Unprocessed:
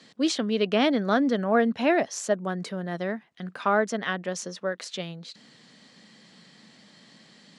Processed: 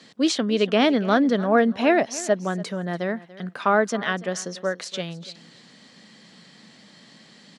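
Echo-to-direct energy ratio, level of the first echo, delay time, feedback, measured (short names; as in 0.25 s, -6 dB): -18.5 dB, -18.5 dB, 0.288 s, 16%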